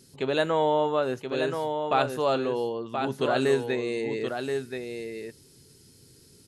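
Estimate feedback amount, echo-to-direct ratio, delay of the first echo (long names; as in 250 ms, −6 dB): repeats not evenly spaced, −6.0 dB, 1,027 ms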